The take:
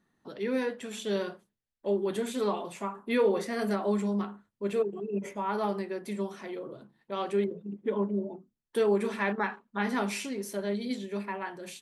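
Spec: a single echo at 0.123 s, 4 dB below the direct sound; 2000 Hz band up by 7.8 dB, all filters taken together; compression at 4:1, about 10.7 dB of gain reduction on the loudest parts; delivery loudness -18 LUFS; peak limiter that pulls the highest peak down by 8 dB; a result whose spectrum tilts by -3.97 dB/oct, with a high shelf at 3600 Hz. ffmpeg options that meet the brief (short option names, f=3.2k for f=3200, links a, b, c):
-af "equalizer=f=2k:t=o:g=7.5,highshelf=f=3.6k:g=8,acompressor=threshold=-33dB:ratio=4,alimiter=level_in=4.5dB:limit=-24dB:level=0:latency=1,volume=-4.5dB,aecho=1:1:123:0.631,volume=19dB"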